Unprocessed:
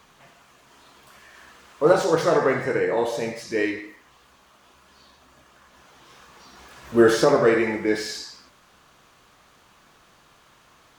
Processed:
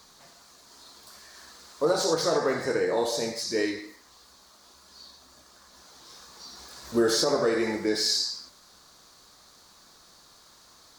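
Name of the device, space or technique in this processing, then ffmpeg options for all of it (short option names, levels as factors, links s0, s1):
over-bright horn tweeter: -af "highshelf=f=3500:t=q:w=3:g=7,alimiter=limit=0.251:level=0:latency=1:release=202,equalizer=f=130:t=o:w=0.43:g=-5.5,volume=0.75"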